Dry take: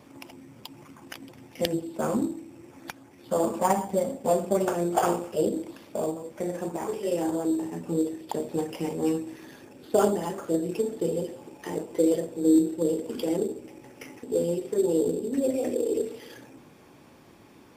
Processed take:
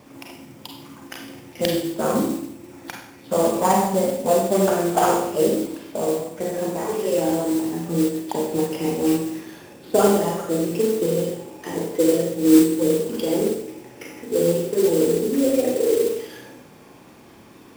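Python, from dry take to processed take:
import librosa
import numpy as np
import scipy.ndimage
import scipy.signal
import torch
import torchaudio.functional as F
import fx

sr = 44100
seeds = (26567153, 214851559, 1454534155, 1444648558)

y = fx.rev_schroeder(x, sr, rt60_s=0.69, comb_ms=32, drr_db=0.5)
y = fx.mod_noise(y, sr, seeds[0], snr_db=17)
y = F.gain(torch.from_numpy(y), 3.5).numpy()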